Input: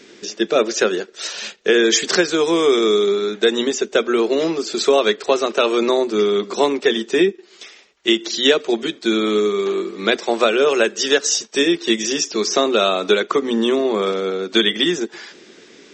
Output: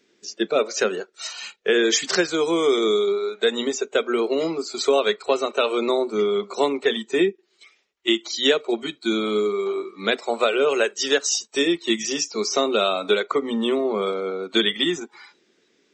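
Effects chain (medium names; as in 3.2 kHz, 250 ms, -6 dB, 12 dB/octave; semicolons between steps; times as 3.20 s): spectral noise reduction 15 dB; trim -4 dB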